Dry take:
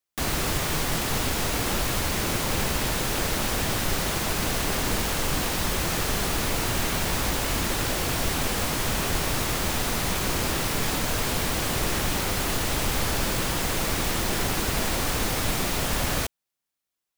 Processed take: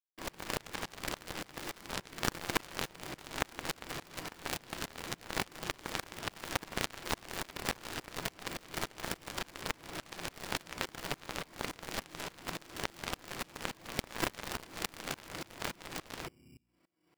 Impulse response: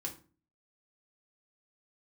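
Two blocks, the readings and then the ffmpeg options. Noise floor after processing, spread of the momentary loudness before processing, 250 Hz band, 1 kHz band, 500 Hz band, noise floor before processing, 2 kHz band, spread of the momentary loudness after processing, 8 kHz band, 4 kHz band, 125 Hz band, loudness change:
-64 dBFS, 0 LU, -14.5 dB, -12.0 dB, -13.5 dB, -85 dBFS, -11.5 dB, 7 LU, -16.5 dB, -13.0 dB, -18.5 dB, -14.5 dB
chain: -filter_complex "[0:a]highpass=170,equalizer=f=520:t=q:w=4:g=-5,equalizer=f=2100:t=q:w=4:g=6,equalizer=f=3200:t=q:w=4:g=3,equalizer=f=4700:t=q:w=4:g=8,lowpass=f=9400:w=0.5412,lowpass=f=9400:w=1.3066,bandreject=f=60:t=h:w=6,bandreject=f=120:t=h:w=6,bandreject=f=180:t=h:w=6,bandreject=f=240:t=h:w=6,bandreject=f=300:t=h:w=6[s0];[1:a]atrim=start_sample=2205,afade=t=out:st=0.41:d=0.01,atrim=end_sample=18522[s1];[s0][s1]afir=irnorm=-1:irlink=0,acrossover=split=450[s2][s3];[s2]acrusher=samples=17:mix=1:aa=0.000001[s4];[s3]adynamicsmooth=sensitivity=1:basefreq=580[s5];[s4][s5]amix=inputs=2:normalize=0,highshelf=f=2100:g=8,areverse,acompressor=mode=upward:threshold=0.0126:ratio=2.5,areverse,bandreject=f=830:w=12,aeval=exprs='0.119*(cos(1*acos(clip(val(0)/0.119,-1,1)))-cos(1*PI/2))+0.0531*(cos(3*acos(clip(val(0)/0.119,-1,1)))-cos(3*PI/2))+0.00944*(cos(4*acos(clip(val(0)/0.119,-1,1)))-cos(4*PI/2))+0.00376*(cos(6*acos(clip(val(0)/0.119,-1,1)))-cos(6*PI/2))':c=same,aeval=exprs='val(0)*pow(10,-26*if(lt(mod(-3.5*n/s,1),2*abs(-3.5)/1000),1-mod(-3.5*n/s,1)/(2*abs(-3.5)/1000),(mod(-3.5*n/s,1)-2*abs(-3.5)/1000)/(1-2*abs(-3.5)/1000))/20)':c=same,volume=2.37"

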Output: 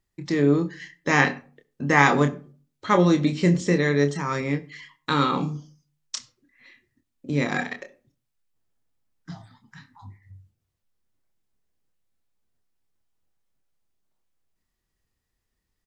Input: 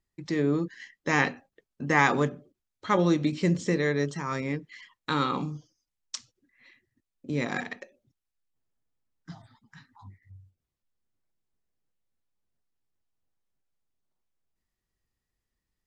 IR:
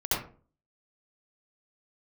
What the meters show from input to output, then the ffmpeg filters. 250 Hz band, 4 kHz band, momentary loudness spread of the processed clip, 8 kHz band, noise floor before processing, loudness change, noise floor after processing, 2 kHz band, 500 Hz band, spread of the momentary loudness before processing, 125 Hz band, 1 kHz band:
+5.0 dB, +5.0 dB, 17 LU, +5.0 dB, under -85 dBFS, +5.0 dB, -79 dBFS, +5.0 dB, +5.0 dB, 17 LU, +6.0 dB, +5.0 dB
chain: -filter_complex "[0:a]asplit=2[s0][s1];[s1]adelay=28,volume=0.398[s2];[s0][s2]amix=inputs=2:normalize=0,asplit=2[s3][s4];[1:a]atrim=start_sample=2205[s5];[s4][s5]afir=irnorm=-1:irlink=0,volume=0.0335[s6];[s3][s6]amix=inputs=2:normalize=0,volume=1.58"

